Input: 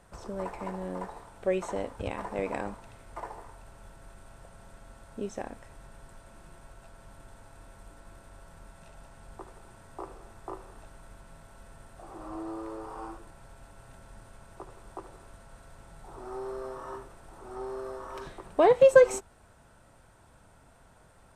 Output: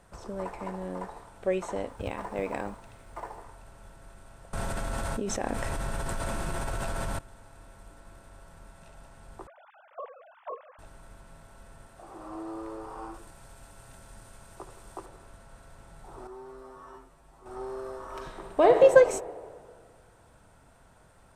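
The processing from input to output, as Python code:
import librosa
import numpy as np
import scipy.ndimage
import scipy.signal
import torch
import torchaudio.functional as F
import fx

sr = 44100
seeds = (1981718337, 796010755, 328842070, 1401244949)

y = fx.quant_companded(x, sr, bits=8, at=(1.9, 3.37))
y = fx.env_flatten(y, sr, amount_pct=100, at=(4.53, 7.19))
y = fx.sine_speech(y, sr, at=(9.47, 10.79))
y = fx.low_shelf(y, sr, hz=130.0, db=-6.0, at=(11.86, 12.55))
y = fx.high_shelf(y, sr, hz=3600.0, db=8.0, at=(13.14, 15.06))
y = fx.comb_fb(y, sr, f0_hz=53.0, decay_s=0.15, harmonics='odd', damping=0.0, mix_pct=100, at=(16.27, 17.46))
y = fx.reverb_throw(y, sr, start_s=18.06, length_s=0.76, rt60_s=1.9, drr_db=3.5)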